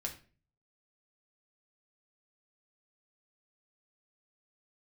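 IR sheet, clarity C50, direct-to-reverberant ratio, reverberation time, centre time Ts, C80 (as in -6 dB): 11.5 dB, 0.5 dB, 0.40 s, 13 ms, 16.0 dB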